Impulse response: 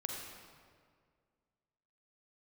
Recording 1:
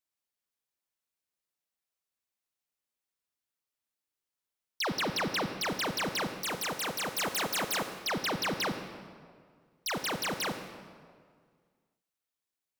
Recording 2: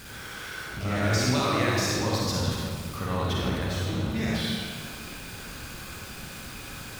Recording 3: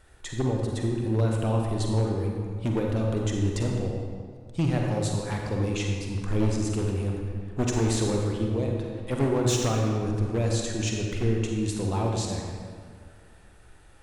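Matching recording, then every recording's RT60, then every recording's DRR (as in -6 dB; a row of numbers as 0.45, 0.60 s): 3; 2.0, 2.0, 2.0 s; 7.5, -5.0, 0.0 dB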